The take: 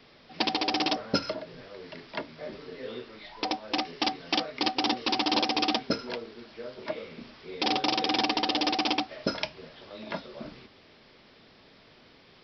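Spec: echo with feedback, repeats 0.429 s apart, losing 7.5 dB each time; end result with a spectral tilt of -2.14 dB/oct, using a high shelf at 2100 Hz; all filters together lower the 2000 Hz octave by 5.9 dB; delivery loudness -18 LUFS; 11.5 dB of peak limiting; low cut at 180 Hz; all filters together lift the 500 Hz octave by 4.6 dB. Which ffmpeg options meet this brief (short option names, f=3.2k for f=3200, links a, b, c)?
-af "highpass=180,equalizer=f=500:t=o:g=6.5,equalizer=f=2k:t=o:g=-4,highshelf=f=2.1k:g=-6,alimiter=limit=-22dB:level=0:latency=1,aecho=1:1:429|858|1287|1716|2145:0.422|0.177|0.0744|0.0312|0.0131,volume=16.5dB"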